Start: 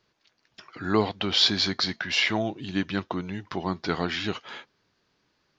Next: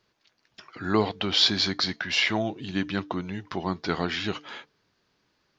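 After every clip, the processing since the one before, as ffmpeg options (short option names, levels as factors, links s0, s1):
-af "bandreject=f=148.9:t=h:w=4,bandreject=f=297.8:t=h:w=4,bandreject=f=446.7:t=h:w=4"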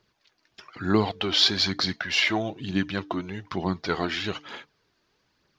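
-af "aphaser=in_gain=1:out_gain=1:delay=3.4:decay=0.41:speed=1.1:type=triangular"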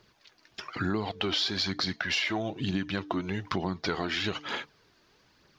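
-filter_complex "[0:a]asplit=2[s0][s1];[s1]alimiter=limit=0.141:level=0:latency=1:release=28,volume=1.12[s2];[s0][s2]amix=inputs=2:normalize=0,acompressor=threshold=0.0447:ratio=6"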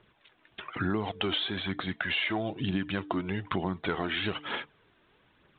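-af "aresample=8000,aresample=44100"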